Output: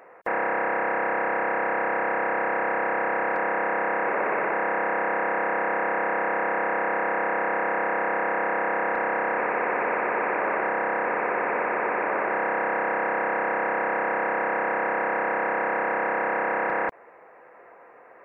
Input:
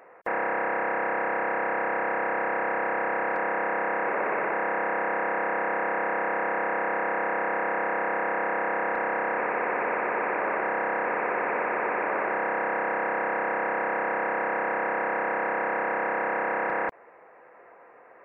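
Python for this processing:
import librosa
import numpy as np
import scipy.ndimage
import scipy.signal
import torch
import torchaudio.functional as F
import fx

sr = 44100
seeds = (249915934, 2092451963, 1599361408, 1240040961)

y = fx.air_absorb(x, sr, metres=64.0, at=(10.69, 12.32))
y = y * librosa.db_to_amplitude(2.0)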